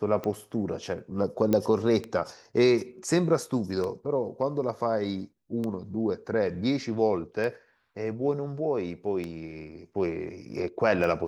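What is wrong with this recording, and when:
tick 33 1/3 rpm -20 dBFS
1.53 s: pop -12 dBFS

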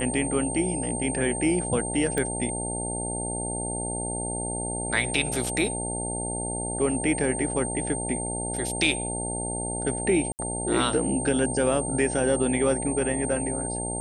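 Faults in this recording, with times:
buzz 60 Hz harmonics 15 -33 dBFS
whine 8.7 kHz -31 dBFS
2.18 s: pop -14 dBFS
10.32–10.39 s: dropout 69 ms

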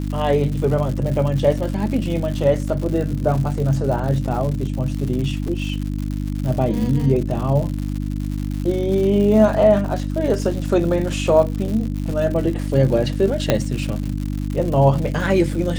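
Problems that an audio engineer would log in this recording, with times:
crackle 170 per s -26 dBFS
hum 50 Hz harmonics 6 -24 dBFS
5.48 s: dropout 2.5 ms
13.50 s: pop -2 dBFS

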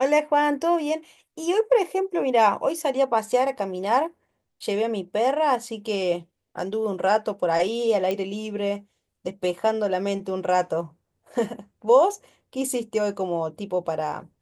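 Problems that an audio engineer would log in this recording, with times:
8.11 s: pop -14 dBFS

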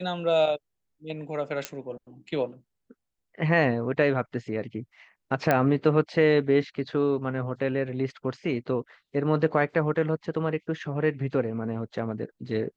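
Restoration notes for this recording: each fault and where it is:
1.65 s: pop -12 dBFS
5.51 s: pop -9 dBFS

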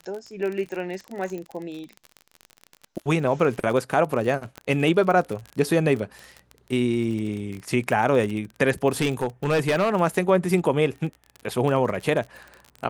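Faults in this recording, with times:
crackle 30 per s -29 dBFS
1.38 s: pop -23 dBFS
4.58 s: pop -20 dBFS
9.01–9.95 s: clipped -17 dBFS

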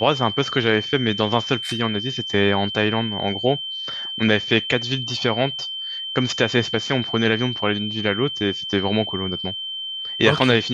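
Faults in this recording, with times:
whine 3.1 kHz -27 dBFS

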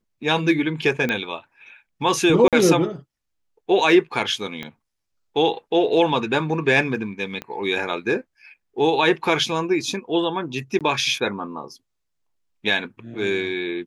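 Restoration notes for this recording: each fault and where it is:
1.09 s: pop -11 dBFS
2.48–2.53 s: dropout 47 ms
4.63 s: pop -17 dBFS
7.42 s: pop -17 dBFS
10.79–10.81 s: dropout 17 ms

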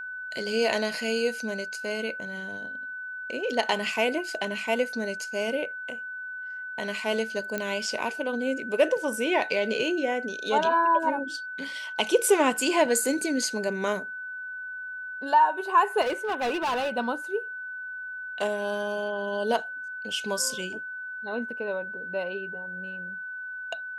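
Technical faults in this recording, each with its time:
whine 1.5 kHz -34 dBFS
7.58 s: pop -15 dBFS
16.01–16.91 s: clipped -24 dBFS

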